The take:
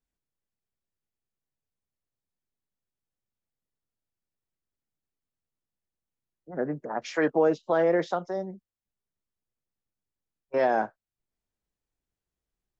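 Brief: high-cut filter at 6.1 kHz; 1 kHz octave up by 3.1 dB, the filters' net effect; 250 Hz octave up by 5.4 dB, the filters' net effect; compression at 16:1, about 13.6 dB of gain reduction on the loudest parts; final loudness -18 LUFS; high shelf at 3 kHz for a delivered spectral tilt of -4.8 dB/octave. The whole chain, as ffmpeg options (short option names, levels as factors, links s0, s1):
-af "lowpass=6100,equalizer=f=250:t=o:g=7.5,equalizer=f=1000:t=o:g=3.5,highshelf=f=3000:g=3.5,acompressor=threshold=0.0355:ratio=16,volume=7.5"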